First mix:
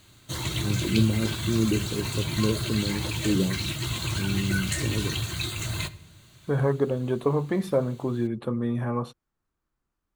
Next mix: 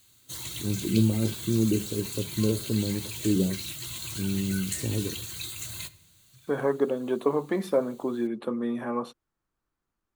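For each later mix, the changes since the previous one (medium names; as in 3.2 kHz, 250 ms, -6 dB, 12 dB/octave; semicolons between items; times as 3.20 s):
second voice: add high-pass 210 Hz 24 dB/octave; background: add pre-emphasis filter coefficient 0.8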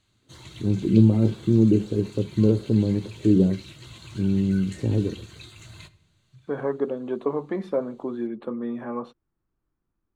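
first voice +7.0 dB; master: add tape spacing loss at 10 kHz 21 dB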